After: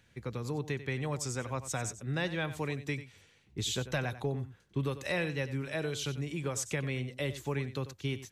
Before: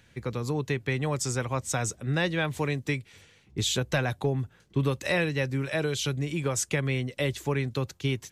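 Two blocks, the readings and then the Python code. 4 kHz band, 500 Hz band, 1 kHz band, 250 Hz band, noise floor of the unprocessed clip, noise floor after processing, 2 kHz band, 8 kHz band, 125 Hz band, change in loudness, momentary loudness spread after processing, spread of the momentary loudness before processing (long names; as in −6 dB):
−6.5 dB, −6.5 dB, −6.5 dB, −6.5 dB, −61 dBFS, −65 dBFS, −6.5 dB, −6.5 dB, −6.5 dB, −6.5 dB, 5 LU, 5 LU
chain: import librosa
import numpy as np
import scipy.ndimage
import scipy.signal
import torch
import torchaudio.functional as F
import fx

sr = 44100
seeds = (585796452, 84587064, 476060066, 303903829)

y = x + 10.0 ** (-13.5 / 20.0) * np.pad(x, (int(93 * sr / 1000.0), 0))[:len(x)]
y = y * librosa.db_to_amplitude(-6.5)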